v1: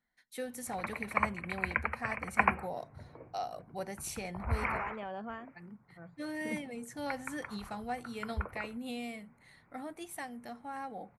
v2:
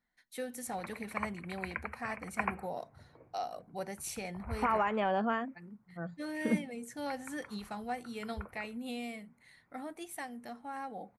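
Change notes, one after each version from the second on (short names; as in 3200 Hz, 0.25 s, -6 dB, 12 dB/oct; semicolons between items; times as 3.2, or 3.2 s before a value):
second voice +10.5 dB; background -7.5 dB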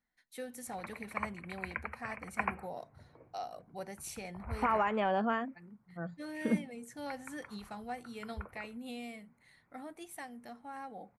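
first voice -3.5 dB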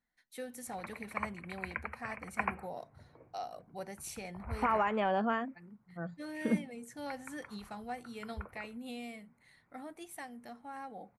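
none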